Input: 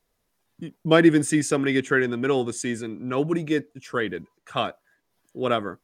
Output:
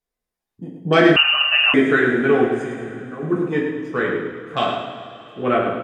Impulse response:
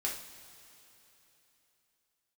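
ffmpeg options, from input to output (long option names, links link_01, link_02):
-filter_complex "[0:a]afwtdn=0.0224,asettb=1/sr,asplit=3[link_01][link_02][link_03];[link_01]atrim=end=2.464[link_04];[link_02]atrim=start=2.46:end=3.23,asetpts=PTS-STARTPTS,afade=type=in:duration=0.004:curve=qsin,afade=type=out:start_time=0.766:duration=0.004:curve=qsin,acompressor=threshold=-36dB:ratio=6[link_05];[link_03]atrim=start=3.226[link_06];[link_04][link_05]acrossfade=duration=0.004:curve1=hsin:curve2=qsin[link_07];[link_07][link_06]acrossfade=duration=0.004:curve1=qsin:curve2=hsin,aecho=1:1:105|210|315|420|525:0.447|0.179|0.0715|0.0286|0.0114[link_08];[1:a]atrim=start_sample=2205[link_09];[link_08][link_09]afir=irnorm=-1:irlink=0,asettb=1/sr,asplit=3[link_10][link_11][link_12];[link_10]atrim=end=1.164[link_13];[link_11]atrim=start=1.16:end=1.74,asetpts=PTS-STARTPTS,afade=type=in:duration=0.004:curve=qsin,afade=type=out:start_time=0.576:duration=0.004:curve=qsin,lowpass=frequency=2600:width_type=q:width=0.5098,lowpass=frequency=2600:width_type=q:width=0.6013,lowpass=frequency=2600:width_type=q:width=0.9,lowpass=frequency=2600:width_type=q:width=2.563,afreqshift=-3100[link_14];[link_12]atrim=start=1.736[link_15];[link_13][link_14]acrossfade=duration=0.004:curve1=hsin:curve2=qsin[link_16];[link_16][link_15]acrossfade=duration=0.004:curve1=qsin:curve2=hsin,volume=2.5dB"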